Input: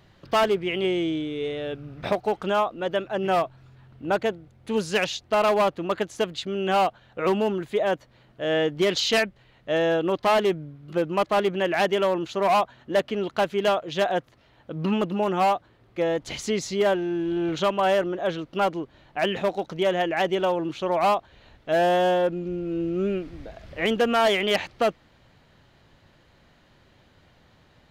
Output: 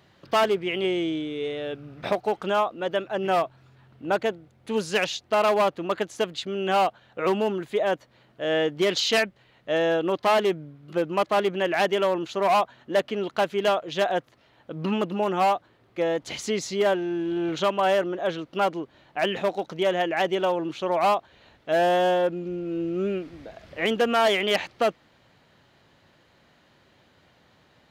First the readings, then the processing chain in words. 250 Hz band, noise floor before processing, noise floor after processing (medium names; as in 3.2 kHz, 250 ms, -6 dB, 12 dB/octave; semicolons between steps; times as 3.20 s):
-1.5 dB, -59 dBFS, -61 dBFS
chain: high-pass 170 Hz 6 dB/octave